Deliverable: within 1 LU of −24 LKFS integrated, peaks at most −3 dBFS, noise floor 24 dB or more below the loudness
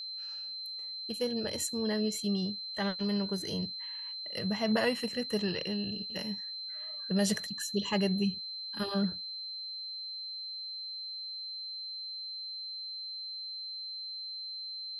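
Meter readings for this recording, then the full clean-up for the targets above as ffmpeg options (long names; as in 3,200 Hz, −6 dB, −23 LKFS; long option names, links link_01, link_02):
interfering tone 4,100 Hz; level of the tone −38 dBFS; integrated loudness −34.0 LKFS; sample peak −17.0 dBFS; target loudness −24.0 LKFS
→ -af "bandreject=frequency=4100:width=30"
-af "volume=10dB"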